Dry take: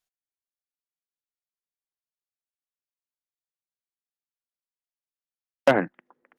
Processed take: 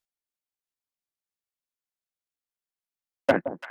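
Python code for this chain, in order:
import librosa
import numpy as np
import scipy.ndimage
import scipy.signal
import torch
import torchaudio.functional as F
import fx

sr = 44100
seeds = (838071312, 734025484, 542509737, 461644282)

y = fx.stretch_grains(x, sr, factor=0.58, grain_ms=32.0)
y = fx.echo_alternate(y, sr, ms=169, hz=1000.0, feedback_pct=89, wet_db=-11)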